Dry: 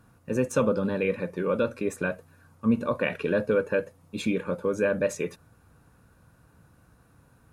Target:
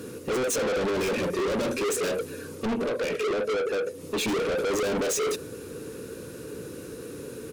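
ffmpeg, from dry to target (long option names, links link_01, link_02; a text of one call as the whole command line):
ffmpeg -i in.wav -filter_complex "[0:a]asettb=1/sr,asplit=3[link_01][link_02][link_03];[link_01]atrim=end=0.964[link_04];[link_02]atrim=start=0.96:end=1.84,asetpts=PTS-STARTPTS,afade=type=in:duration=0.004:curve=qsin,afade=type=out:start_time=0.876:duration=0.004:curve=qsin,equalizer=frequency=470:width_type=o:width=0.33:gain=-13[link_05];[link_03]atrim=start=1.836[link_06];[link_04][link_05]acrossfade=duration=0.004:curve1=hsin:curve2=qsin[link_07];[link_07][link_06]acrossfade=duration=0.004:curve1=qsin:curve2=hsin,asettb=1/sr,asplit=3[link_08][link_09][link_10];[link_08]atrim=end=2.734[link_11];[link_09]atrim=start=2.73:end=4.28,asetpts=PTS-STARTPTS,afade=type=in:duration=0.004:curve=qsin,afade=type=out:start_time=1.546:duration=0.004:curve=qsin,acompressor=threshold=-35dB:ratio=8[link_12];[link_10]atrim=start=4.276[link_13];[link_11][link_12]acrossfade=duration=0.004:curve1=hsin:curve2=qsin[link_14];[link_14][link_13]acrossfade=duration=0.004:curve1=qsin:curve2=hsin,asplit=2[link_15][link_16];[link_16]highpass=frequency=720:poles=1,volume=33dB,asoftclip=type=tanh:threshold=-11dB[link_17];[link_15][link_17]amix=inputs=2:normalize=0,lowpass=frequency=7200:poles=1,volume=-6dB,firequalizer=gain_entry='entry(170,0);entry(430,14);entry(710,-17);entry(2600,-4);entry(6100,0)':delay=0.05:min_phase=1,asoftclip=type=tanh:threshold=-25dB" out.wav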